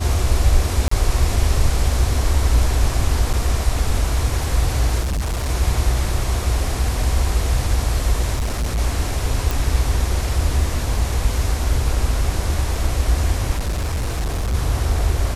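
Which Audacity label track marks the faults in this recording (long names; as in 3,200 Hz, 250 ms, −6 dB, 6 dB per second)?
0.880000	0.910000	drop-out 34 ms
3.330000	3.340000	drop-out 6 ms
5.020000	5.500000	clipping −18.5 dBFS
8.340000	8.790000	clipping −17.5 dBFS
9.510000	9.510000	click
13.550000	14.550000	clipping −18 dBFS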